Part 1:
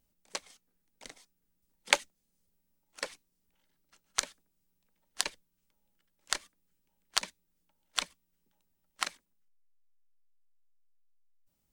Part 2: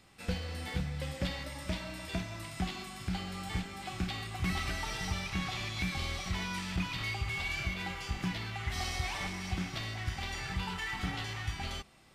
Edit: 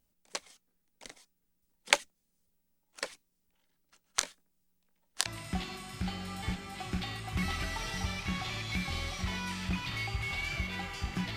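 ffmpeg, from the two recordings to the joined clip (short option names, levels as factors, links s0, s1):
-filter_complex "[0:a]asettb=1/sr,asplit=3[s0][s1][s2];[s0]atrim=end=4.124[s3];[s1]atrim=start=4.12:end=5.26,asetpts=PTS-STARTPTS,afade=t=in:d=0.004:c=qsin,afade=t=out:st=1.136:d=0.004:c=qsin,asplit=2[s4][s5];[s5]adelay=22,volume=0.282[s6];[s4][s6]amix=inputs=2:normalize=0,atrim=end_sample=50274[s7];[s2]atrim=start=5.256[s8];[s3][s7]acrossfade=d=0.004:c1=hsin:c2=qsin[s9];[s9][s8]acrossfade=d=0.004:c1=qsin:c2=hsin,apad=whole_dur=11.36,atrim=end=11.36,atrim=end=5.262[s10];[1:a]atrim=start=2.328:end=8.43[s11];[s10][s11]acrossfade=d=0.004:c1=hsin:c2=hsin"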